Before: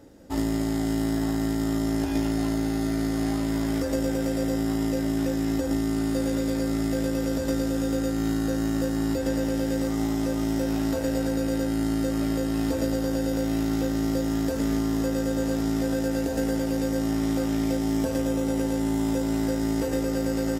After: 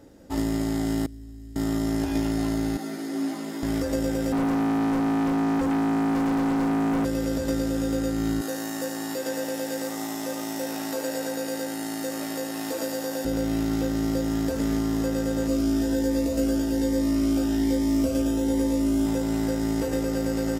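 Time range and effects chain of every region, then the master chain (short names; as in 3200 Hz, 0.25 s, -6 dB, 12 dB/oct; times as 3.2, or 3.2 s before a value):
1.06–1.56 passive tone stack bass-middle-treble 10-0-1 + notch comb 170 Hz
2.77–3.63 HPF 190 Hz 24 dB/oct + ensemble effect
4.32–7.05 bell 210 Hz +14.5 dB 1.8 oct + overloaded stage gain 22.5 dB
8.41–13.25 HPF 370 Hz + high shelf 7600 Hz +7.5 dB + echo 74 ms -6.5 dB
15.47–19.06 doubler 15 ms -5 dB + cascading phaser rising 1.2 Hz
whole clip: dry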